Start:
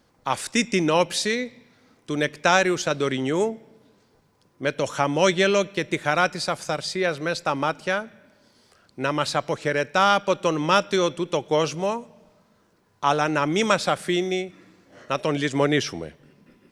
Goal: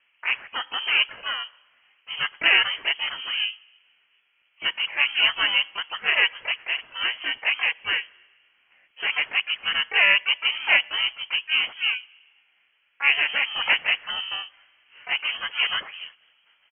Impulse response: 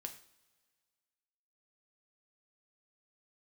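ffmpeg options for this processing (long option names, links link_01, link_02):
-filter_complex "[0:a]acrossover=split=480 2100:gain=0.0891 1 0.112[link_01][link_02][link_03];[link_01][link_02][link_03]amix=inputs=3:normalize=0,asplit=4[link_04][link_05][link_06][link_07];[link_05]asetrate=33038,aresample=44100,atempo=1.33484,volume=-4dB[link_08];[link_06]asetrate=52444,aresample=44100,atempo=0.840896,volume=-5dB[link_09];[link_07]asetrate=88200,aresample=44100,atempo=0.5,volume=-8dB[link_10];[link_04][link_08][link_09][link_10]amix=inputs=4:normalize=0,lowpass=frequency=2900:width_type=q:width=0.5098,lowpass=frequency=2900:width_type=q:width=0.6013,lowpass=frequency=2900:width_type=q:width=0.9,lowpass=frequency=2900:width_type=q:width=2.563,afreqshift=-3400"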